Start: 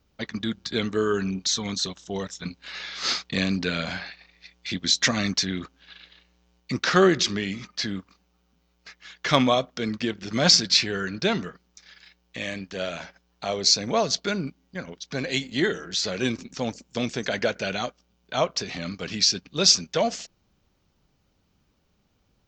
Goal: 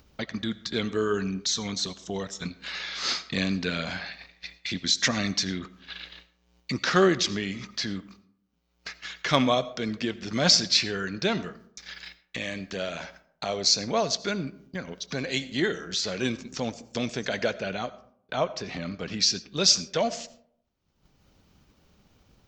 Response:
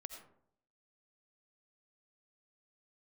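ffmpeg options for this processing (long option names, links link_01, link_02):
-filter_complex "[0:a]agate=range=-33dB:threshold=-48dB:ratio=3:detection=peak,asettb=1/sr,asplit=3[link_01][link_02][link_03];[link_01]atrim=end=17.544[link_04];[link_02]atrim=start=17.54:end=19.2,asetpts=PTS-STARTPTS,afade=type=in:duration=0.004:curve=qsin,afade=type=out:start_time=1.656:duration=0.004:curve=qsin,highshelf=frequency=3200:gain=-10[link_05];[link_03]atrim=start=19.196[link_06];[link_04][link_05]acrossfade=duration=0.004:curve1=hsin:curve2=qsin[link_07];[link_07][link_06]acrossfade=duration=0.004:curve1=qsin:curve2=hsin,acompressor=mode=upward:threshold=-26dB:ratio=2.5,asplit=2[link_08][link_09];[1:a]atrim=start_sample=2205[link_10];[link_09][link_10]afir=irnorm=-1:irlink=0,volume=-3.5dB[link_11];[link_08][link_11]amix=inputs=2:normalize=0,volume=-5dB"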